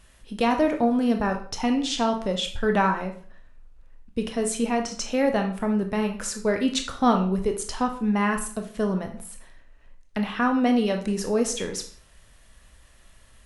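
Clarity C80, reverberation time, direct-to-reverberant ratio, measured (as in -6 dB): 14.0 dB, 0.50 s, 4.0 dB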